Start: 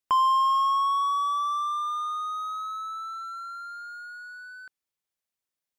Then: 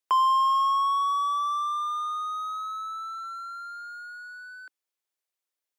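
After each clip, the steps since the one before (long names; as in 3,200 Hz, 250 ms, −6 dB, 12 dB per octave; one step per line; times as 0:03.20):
Butterworth high-pass 300 Hz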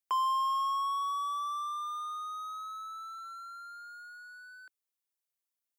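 high-shelf EQ 7,000 Hz +9 dB
level −8 dB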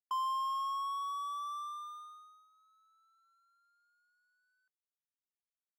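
noise gate −38 dBFS, range −23 dB
level −5 dB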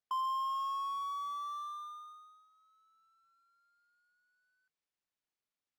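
linearly interpolated sample-rate reduction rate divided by 3×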